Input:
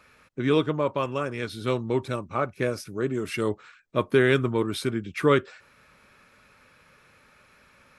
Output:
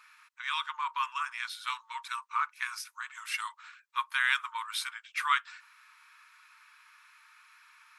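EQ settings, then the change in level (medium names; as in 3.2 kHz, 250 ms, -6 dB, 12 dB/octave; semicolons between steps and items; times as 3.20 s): brick-wall FIR high-pass 880 Hz; 0.0 dB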